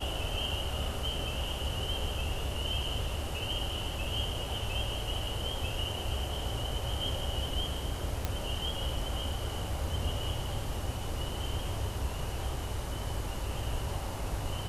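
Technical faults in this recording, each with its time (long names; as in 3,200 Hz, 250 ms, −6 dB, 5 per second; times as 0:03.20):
0:08.25: click −16 dBFS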